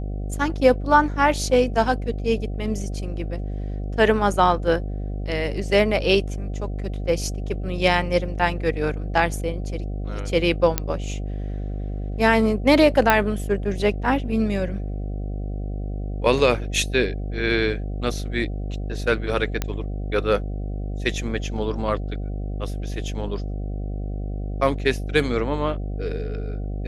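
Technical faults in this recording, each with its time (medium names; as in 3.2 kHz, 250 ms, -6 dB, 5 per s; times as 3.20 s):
buzz 50 Hz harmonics 15 -28 dBFS
10.78 s: pop -4 dBFS
13.10 s: pop -2 dBFS
19.62 s: pop -9 dBFS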